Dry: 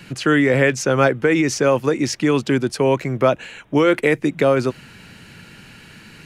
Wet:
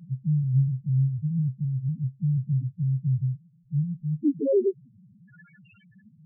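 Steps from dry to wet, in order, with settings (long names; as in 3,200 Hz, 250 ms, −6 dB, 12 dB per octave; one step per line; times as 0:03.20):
low-pass filter sweep 160 Hz → 6,200 Hz, 0:04.02–0:06.09
spectral peaks only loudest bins 1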